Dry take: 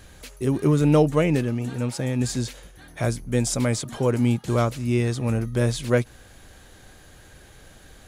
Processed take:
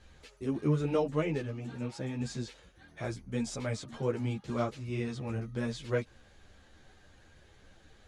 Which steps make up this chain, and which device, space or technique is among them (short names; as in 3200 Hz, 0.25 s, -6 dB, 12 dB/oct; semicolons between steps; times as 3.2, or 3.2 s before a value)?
string-machine ensemble chorus (ensemble effect; LPF 5700 Hz 12 dB/oct); gain -7 dB